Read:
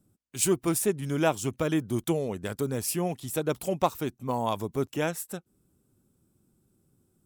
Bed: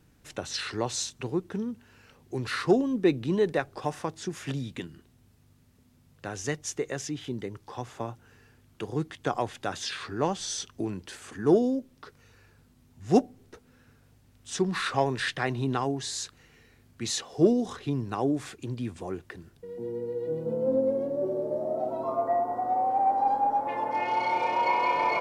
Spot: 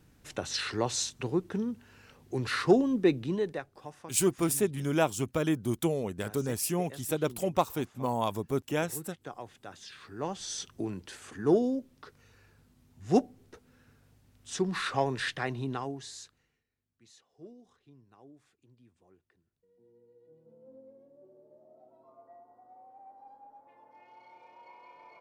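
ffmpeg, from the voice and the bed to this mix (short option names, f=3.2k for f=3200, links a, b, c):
-filter_complex "[0:a]adelay=3750,volume=-1.5dB[a];[1:a]volume=11dB,afade=t=out:st=2.93:d=0.78:silence=0.199526,afade=t=in:st=9.98:d=0.65:silence=0.281838,afade=t=out:st=15.25:d=1.39:silence=0.0530884[b];[a][b]amix=inputs=2:normalize=0"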